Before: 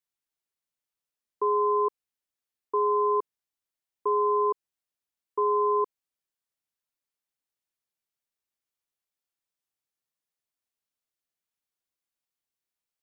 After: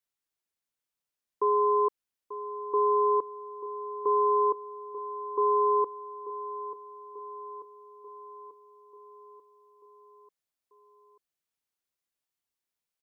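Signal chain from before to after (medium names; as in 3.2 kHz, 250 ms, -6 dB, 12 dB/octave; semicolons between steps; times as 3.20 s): feedback delay 889 ms, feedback 58%, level -13 dB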